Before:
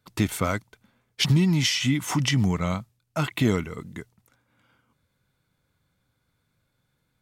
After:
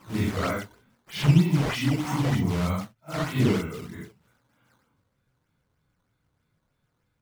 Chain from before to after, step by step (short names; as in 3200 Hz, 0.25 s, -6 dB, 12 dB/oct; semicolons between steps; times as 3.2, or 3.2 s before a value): phase scrambler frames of 0.2 s; high shelf 3900 Hz -8 dB; decimation with a swept rate 10×, swing 160% 3.2 Hz; slew limiter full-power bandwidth 150 Hz